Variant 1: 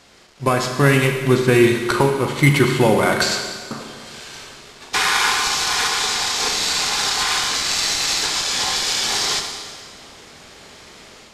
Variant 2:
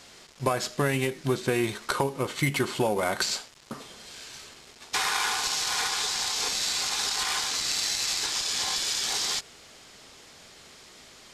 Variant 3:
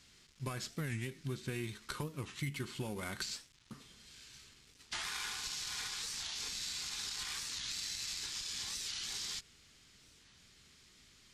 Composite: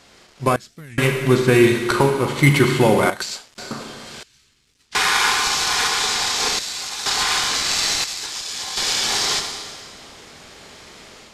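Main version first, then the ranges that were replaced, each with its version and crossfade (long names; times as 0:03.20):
1
0:00.56–0:00.98: punch in from 3
0:03.10–0:03.58: punch in from 2
0:04.23–0:04.95: punch in from 3
0:06.59–0:07.06: punch in from 2
0:08.04–0:08.77: punch in from 2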